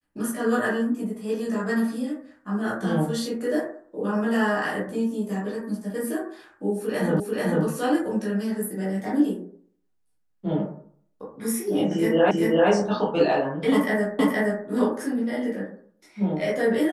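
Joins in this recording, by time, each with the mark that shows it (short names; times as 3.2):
7.2 repeat of the last 0.44 s
12.31 repeat of the last 0.39 s
14.19 repeat of the last 0.47 s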